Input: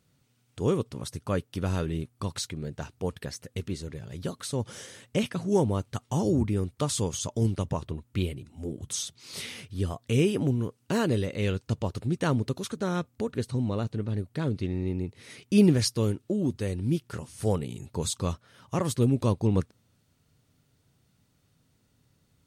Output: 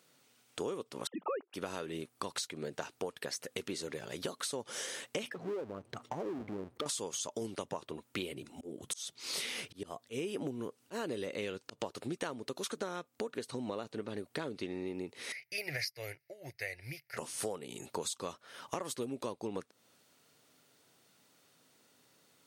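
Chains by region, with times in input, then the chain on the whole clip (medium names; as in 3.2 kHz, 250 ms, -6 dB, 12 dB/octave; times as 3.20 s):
1.07–1.54 s: formants replaced by sine waves + tilt shelf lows +4 dB, about 1.4 kHz
5.27–6.86 s: resonances exaggerated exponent 2 + compression 3:1, threshold -37 dBFS + power-law waveshaper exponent 0.7
8.30–11.80 s: slow attack 371 ms + bass shelf 360 Hz +4.5 dB
15.32–17.17 s: FFT filter 140 Hz 0 dB, 200 Hz -30 dB, 420 Hz -16 dB, 680 Hz -1 dB, 1.1 kHz -19 dB, 2.1 kHz +13 dB, 3.3 kHz -14 dB, 4.9 kHz +3 dB, 7.8 kHz -17 dB, 12 kHz +4 dB + upward expansion, over -48 dBFS
whole clip: high-pass 390 Hz 12 dB/octave; compression 12:1, threshold -41 dBFS; trim +6.5 dB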